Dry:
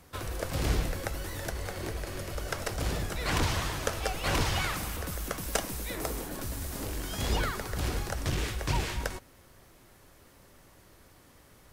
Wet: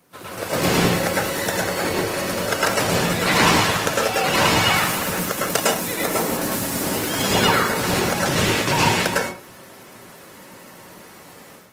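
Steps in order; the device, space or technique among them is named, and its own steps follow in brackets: far-field microphone of a smart speaker (reverberation RT60 0.35 s, pre-delay 100 ms, DRR -4.5 dB; high-pass 140 Hz 24 dB/octave; level rider gain up to 11 dB; Opus 20 kbps 48 kHz)

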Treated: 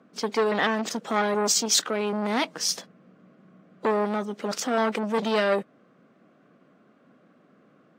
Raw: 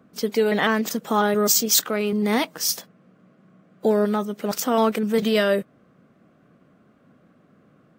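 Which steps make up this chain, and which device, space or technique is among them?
2.45–3.86 s: bass shelf 180 Hz +8.5 dB; public-address speaker with an overloaded transformer (transformer saturation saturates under 2 kHz; band-pass 210–6900 Hz)

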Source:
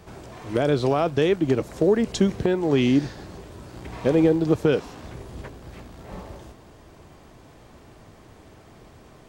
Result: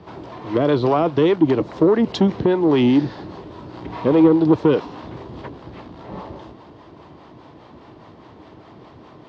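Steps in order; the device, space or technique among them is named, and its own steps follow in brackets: guitar amplifier with harmonic tremolo (harmonic tremolo 4.9 Hz, depth 50%, crossover 490 Hz; saturation -16 dBFS, distortion -16 dB; cabinet simulation 100–4400 Hz, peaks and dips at 310 Hz +5 dB, 970 Hz +6 dB, 1.6 kHz -3 dB, 2.4 kHz -4 dB); trim +7 dB

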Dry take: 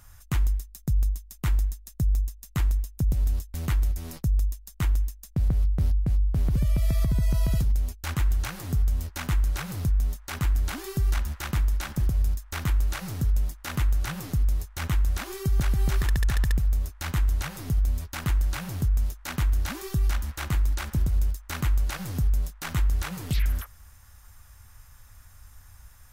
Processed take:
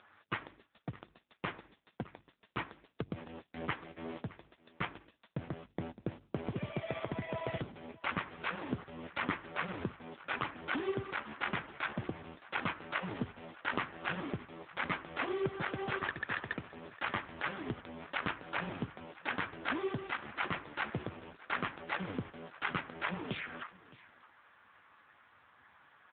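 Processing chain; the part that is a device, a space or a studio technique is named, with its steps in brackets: 11.12–11.52 s: high-pass 100 Hz 12 dB/octave; satellite phone (band-pass 310–3300 Hz; delay 616 ms -20 dB; trim +5.5 dB; AMR-NB 5.9 kbps 8 kHz)

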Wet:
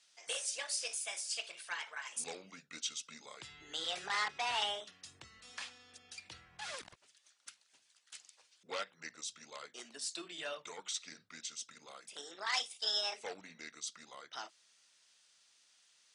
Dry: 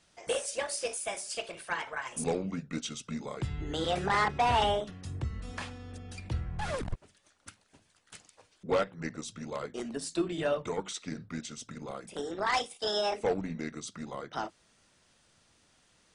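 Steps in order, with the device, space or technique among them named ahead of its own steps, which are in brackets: piezo pickup straight into a mixer (low-pass 5.6 kHz 12 dB/octave; differentiator); trim +6.5 dB

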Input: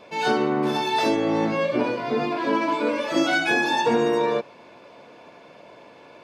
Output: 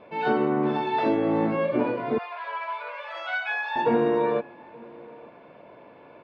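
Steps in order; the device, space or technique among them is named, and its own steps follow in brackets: shout across a valley (distance through air 480 m; echo from a far wall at 150 m, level -23 dB); 2.18–3.76 s: Bessel high-pass 1.1 kHz, order 8

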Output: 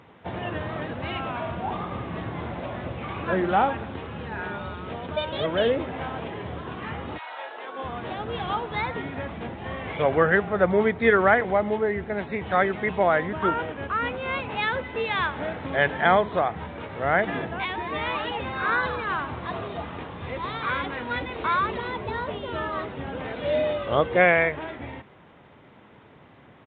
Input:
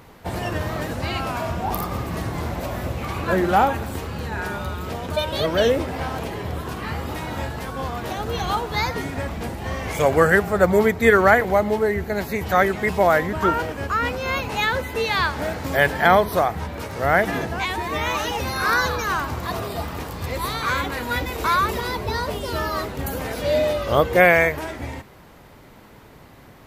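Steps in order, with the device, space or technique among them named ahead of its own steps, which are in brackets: 7.17–7.83 s: high-pass 880 Hz -> 260 Hz 24 dB/octave; Bluetooth headset (high-pass 100 Hz 12 dB/octave; resampled via 8 kHz; trim -4 dB; SBC 64 kbps 16 kHz)

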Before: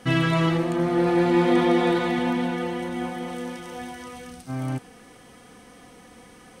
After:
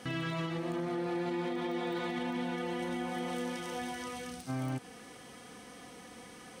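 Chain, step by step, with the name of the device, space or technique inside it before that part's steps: broadcast voice chain (high-pass 100 Hz 6 dB/octave; de-esser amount 85%; compression 4:1, threshold -30 dBFS, peak gain reduction 12 dB; peaking EQ 4.7 kHz +3 dB 1.8 oct; peak limiter -25 dBFS, peak gain reduction 5.5 dB); trim -2 dB

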